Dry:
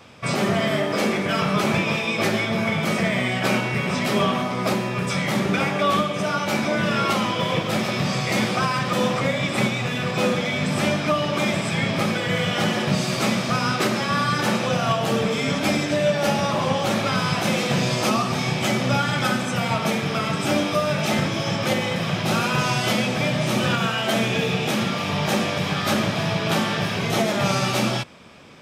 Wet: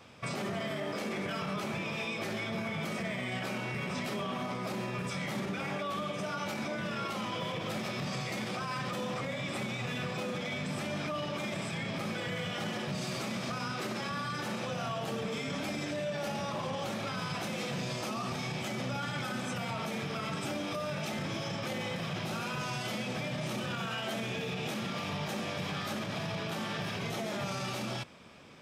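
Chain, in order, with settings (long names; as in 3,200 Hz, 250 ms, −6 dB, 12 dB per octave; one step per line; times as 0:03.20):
brickwall limiter −20 dBFS, peak gain reduction 10 dB
level −7.5 dB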